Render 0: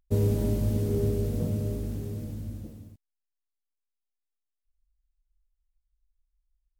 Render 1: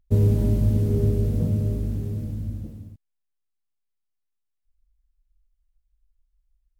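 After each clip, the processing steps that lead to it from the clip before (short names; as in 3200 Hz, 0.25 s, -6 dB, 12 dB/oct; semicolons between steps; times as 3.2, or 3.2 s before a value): tone controls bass +7 dB, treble -3 dB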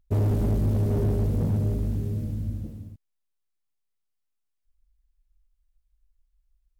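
overloaded stage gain 20 dB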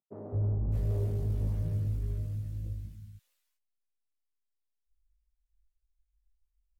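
chorus voices 4, 0.39 Hz, delay 19 ms, depth 1.2 ms; three bands offset in time mids, lows, highs 0.21/0.61 s, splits 200/1300 Hz; gain -7.5 dB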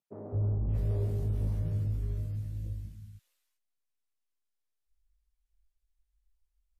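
WMA 128 kbps 32000 Hz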